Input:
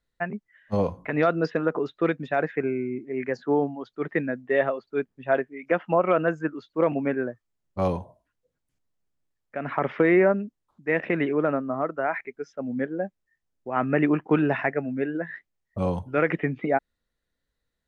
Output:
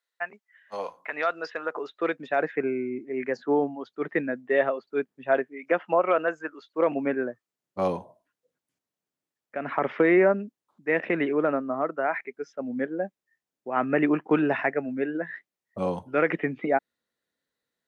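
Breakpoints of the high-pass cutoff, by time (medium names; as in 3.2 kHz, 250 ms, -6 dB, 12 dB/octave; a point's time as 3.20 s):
1.55 s 810 Hz
2.60 s 210 Hz
5.43 s 210 Hz
6.53 s 590 Hz
7.03 s 210 Hz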